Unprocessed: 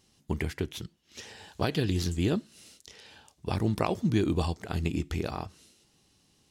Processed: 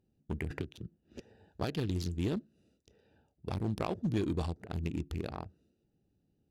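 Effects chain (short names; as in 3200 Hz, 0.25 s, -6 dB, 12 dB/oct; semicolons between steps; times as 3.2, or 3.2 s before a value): Wiener smoothing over 41 samples; one-sided clip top -21.5 dBFS; 0.5–1.2 three-band squash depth 100%; gain -5 dB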